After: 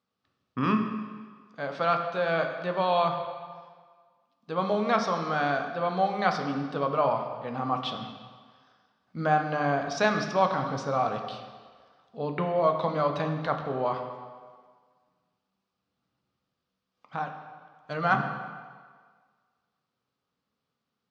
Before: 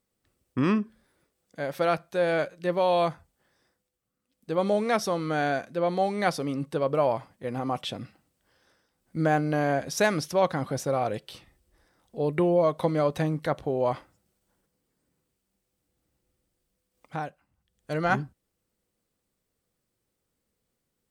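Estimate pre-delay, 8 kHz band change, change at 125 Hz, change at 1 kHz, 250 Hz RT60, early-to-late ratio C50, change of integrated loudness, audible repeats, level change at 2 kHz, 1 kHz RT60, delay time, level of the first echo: 10 ms, −8.0 dB, −2.5 dB, +3.0 dB, 1.4 s, 6.5 dB, −1.0 dB, no echo audible, +1.0 dB, 1.7 s, no echo audible, no echo audible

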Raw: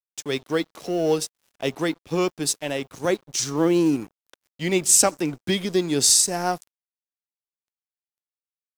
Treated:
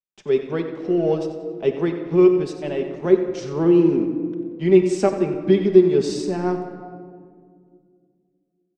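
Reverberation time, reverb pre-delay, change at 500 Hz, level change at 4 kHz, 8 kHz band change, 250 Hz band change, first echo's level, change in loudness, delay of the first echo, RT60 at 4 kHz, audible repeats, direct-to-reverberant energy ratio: 2.1 s, 5 ms, +7.5 dB, −12.5 dB, below −20 dB, +6.0 dB, −11.5 dB, +2.0 dB, 91 ms, 0.95 s, 1, 2.5 dB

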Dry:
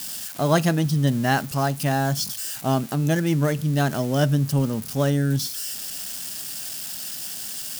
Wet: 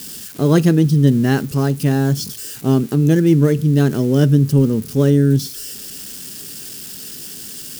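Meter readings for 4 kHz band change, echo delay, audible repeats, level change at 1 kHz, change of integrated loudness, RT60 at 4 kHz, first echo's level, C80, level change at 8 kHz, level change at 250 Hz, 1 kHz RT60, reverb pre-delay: 0.0 dB, no echo audible, no echo audible, −4.0 dB, +8.0 dB, no reverb audible, no echo audible, no reverb audible, 0.0 dB, +9.0 dB, no reverb audible, no reverb audible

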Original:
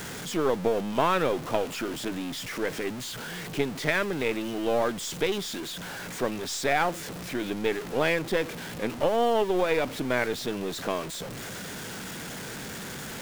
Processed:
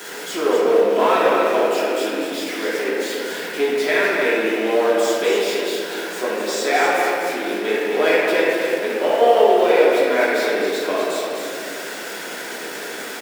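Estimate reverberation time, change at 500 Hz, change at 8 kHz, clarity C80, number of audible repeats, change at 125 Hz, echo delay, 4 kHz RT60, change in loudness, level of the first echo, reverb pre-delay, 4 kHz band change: 2.2 s, +11.0 dB, +5.5 dB, −1.5 dB, 1, can't be measured, 249 ms, 1.3 s, +10.0 dB, −6.0 dB, 3 ms, +7.5 dB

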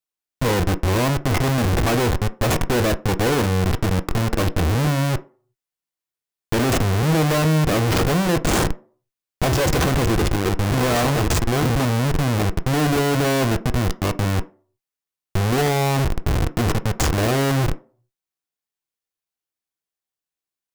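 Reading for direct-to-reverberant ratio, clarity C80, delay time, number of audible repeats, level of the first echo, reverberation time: 10.5 dB, 25.5 dB, no echo audible, no echo audible, no echo audible, 0.45 s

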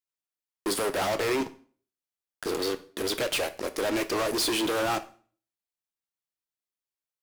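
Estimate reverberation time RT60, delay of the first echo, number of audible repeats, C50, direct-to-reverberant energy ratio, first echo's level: 0.45 s, no echo audible, no echo audible, 16.5 dB, 9.0 dB, no echo audible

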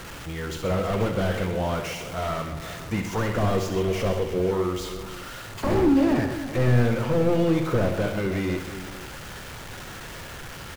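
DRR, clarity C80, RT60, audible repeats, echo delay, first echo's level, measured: no reverb audible, no reverb audible, no reverb audible, 4, 66 ms, −8.5 dB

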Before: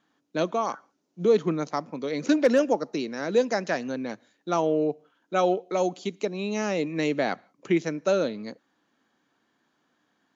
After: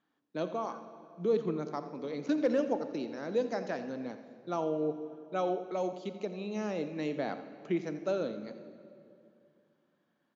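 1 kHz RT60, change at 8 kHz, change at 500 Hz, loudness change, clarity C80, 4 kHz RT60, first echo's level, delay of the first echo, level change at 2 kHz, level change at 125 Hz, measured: 2.2 s, can't be measured, −8.0 dB, −8.0 dB, 10.0 dB, 1.7 s, −14.5 dB, 85 ms, −11.5 dB, −7.5 dB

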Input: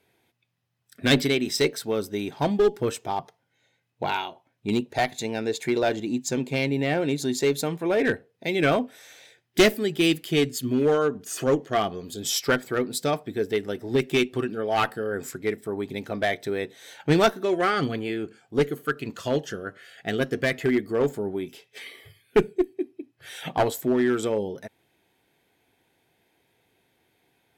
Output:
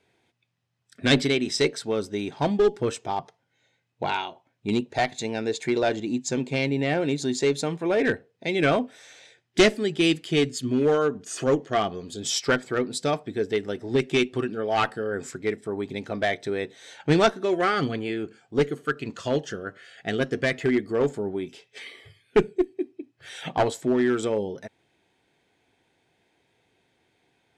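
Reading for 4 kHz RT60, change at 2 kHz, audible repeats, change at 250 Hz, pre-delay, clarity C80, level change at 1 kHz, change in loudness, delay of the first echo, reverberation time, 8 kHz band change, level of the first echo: no reverb audible, 0.0 dB, no echo audible, 0.0 dB, no reverb audible, no reverb audible, 0.0 dB, 0.0 dB, no echo audible, no reverb audible, −1.0 dB, no echo audible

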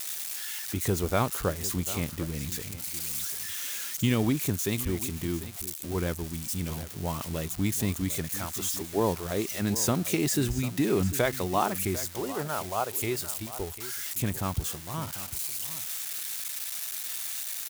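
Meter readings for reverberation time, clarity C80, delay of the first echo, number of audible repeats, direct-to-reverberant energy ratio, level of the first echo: no reverb audible, no reverb audible, 747 ms, 1, no reverb audible, −14.5 dB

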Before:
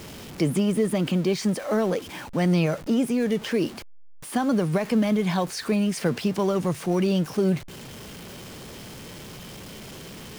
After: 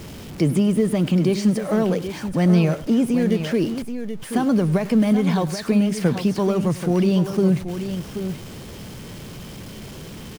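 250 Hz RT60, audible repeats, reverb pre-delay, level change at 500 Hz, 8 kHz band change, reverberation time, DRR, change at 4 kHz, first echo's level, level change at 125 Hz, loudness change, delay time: no reverb audible, 2, no reverb audible, +2.5 dB, +0.5 dB, no reverb audible, no reverb audible, +0.5 dB, −18.0 dB, +6.0 dB, +4.0 dB, 101 ms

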